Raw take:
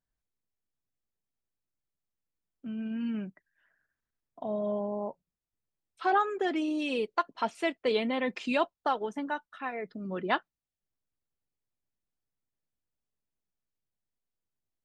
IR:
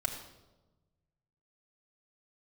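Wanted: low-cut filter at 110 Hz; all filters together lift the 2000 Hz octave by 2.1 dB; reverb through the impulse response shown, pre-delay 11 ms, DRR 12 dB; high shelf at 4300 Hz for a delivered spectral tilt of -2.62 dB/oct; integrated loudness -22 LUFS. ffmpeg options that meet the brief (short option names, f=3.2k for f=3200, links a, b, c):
-filter_complex "[0:a]highpass=110,equalizer=f=2k:t=o:g=3.5,highshelf=f=4.3k:g=-4,asplit=2[a][b];[1:a]atrim=start_sample=2205,adelay=11[c];[b][c]afir=irnorm=-1:irlink=0,volume=-16dB[d];[a][d]amix=inputs=2:normalize=0,volume=9.5dB"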